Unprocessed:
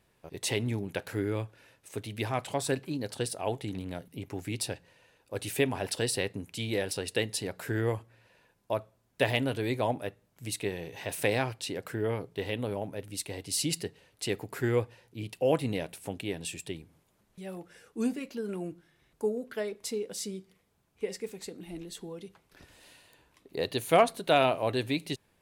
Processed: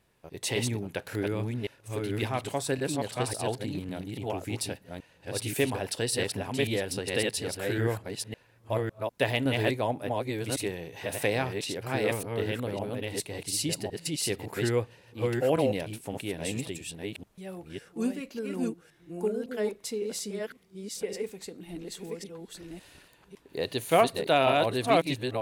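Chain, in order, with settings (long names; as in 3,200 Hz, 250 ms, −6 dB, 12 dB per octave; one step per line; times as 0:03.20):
delay that plays each chunk backwards 556 ms, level −2 dB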